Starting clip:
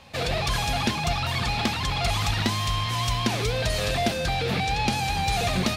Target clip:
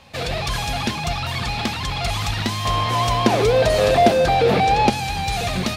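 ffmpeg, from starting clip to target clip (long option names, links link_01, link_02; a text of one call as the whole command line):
ffmpeg -i in.wav -filter_complex "[0:a]asettb=1/sr,asplit=3[link_01][link_02][link_03];[link_01]atrim=end=2.654[link_04];[link_02]atrim=start=2.65:end=4.9,asetpts=PTS-STARTPTS,afade=type=in:duration=0.004:curve=qsin,afade=type=out:start_time=2.246:duration=0.004:curve=qsin,equalizer=frequency=530:width=0.52:gain=12.5[link_05];[link_03]atrim=start=4.896[link_06];[link_04][link_05]acrossfade=duration=0.004:curve1=hsin:curve2=qsin[link_07];[link_07][link_06]acrossfade=duration=0.004:curve1=qsin:curve2=hsin,volume=1.5dB" out.wav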